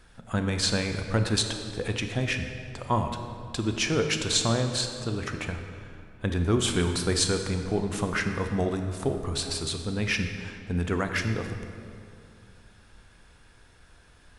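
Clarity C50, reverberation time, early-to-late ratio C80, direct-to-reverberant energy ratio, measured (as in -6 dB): 6.5 dB, 2.4 s, 7.5 dB, 5.5 dB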